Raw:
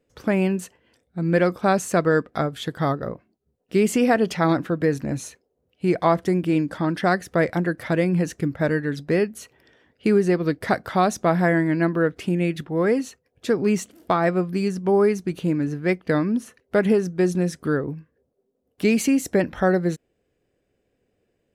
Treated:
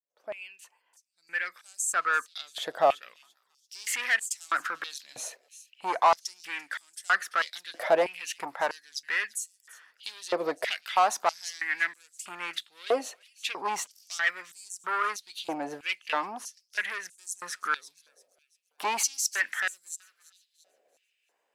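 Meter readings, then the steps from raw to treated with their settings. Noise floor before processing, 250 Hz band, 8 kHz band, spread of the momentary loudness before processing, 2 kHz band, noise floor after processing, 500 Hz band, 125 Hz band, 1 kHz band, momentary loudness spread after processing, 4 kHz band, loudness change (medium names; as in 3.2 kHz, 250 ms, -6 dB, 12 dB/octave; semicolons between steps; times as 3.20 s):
-73 dBFS, -25.5 dB, +3.5 dB, 8 LU, -0.5 dB, -76 dBFS, -12.0 dB, under -35 dB, -2.5 dB, 15 LU, +2.0 dB, -7.5 dB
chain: fade-in on the opening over 3.24 s; saturation -20 dBFS, distortion -10 dB; on a send: feedback echo behind a high-pass 340 ms, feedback 38%, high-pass 5.3 kHz, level -12 dB; on the sum: step-sequenced high-pass 3.1 Hz 640–7700 Hz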